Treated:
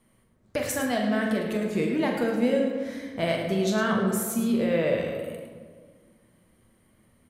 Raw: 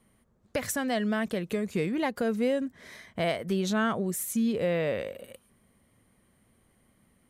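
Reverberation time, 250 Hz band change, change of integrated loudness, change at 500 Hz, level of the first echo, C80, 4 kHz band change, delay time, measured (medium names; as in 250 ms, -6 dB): 1.7 s, +3.5 dB, +3.0 dB, +4.0 dB, -9.0 dB, 4.5 dB, +2.5 dB, 42 ms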